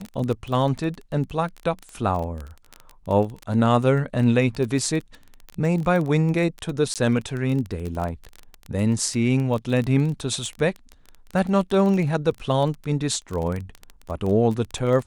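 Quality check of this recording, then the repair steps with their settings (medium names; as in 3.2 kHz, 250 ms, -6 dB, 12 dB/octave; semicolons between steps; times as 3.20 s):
crackle 20 per s -26 dBFS
6.94–6.96 s: dropout 17 ms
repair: de-click; interpolate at 6.94 s, 17 ms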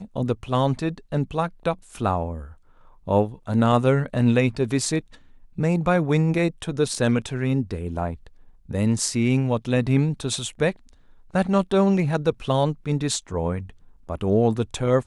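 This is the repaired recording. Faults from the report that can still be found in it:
nothing left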